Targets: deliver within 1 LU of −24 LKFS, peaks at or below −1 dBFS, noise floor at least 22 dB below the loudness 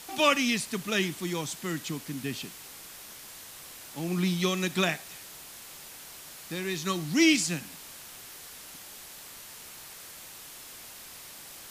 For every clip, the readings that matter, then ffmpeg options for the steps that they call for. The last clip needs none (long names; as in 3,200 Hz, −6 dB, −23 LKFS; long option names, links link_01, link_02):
background noise floor −46 dBFS; target noise floor −51 dBFS; integrated loudness −28.5 LKFS; sample peak −9.5 dBFS; target loudness −24.0 LKFS
→ -af "afftdn=noise_reduction=6:noise_floor=-46"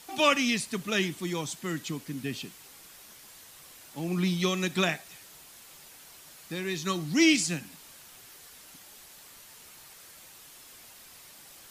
background noise floor −52 dBFS; integrated loudness −28.5 LKFS; sample peak −9.5 dBFS; target loudness −24.0 LKFS
→ -af "volume=4.5dB"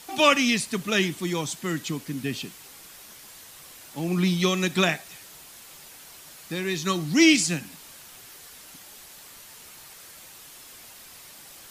integrated loudness −24.0 LKFS; sample peak −5.0 dBFS; background noise floor −47 dBFS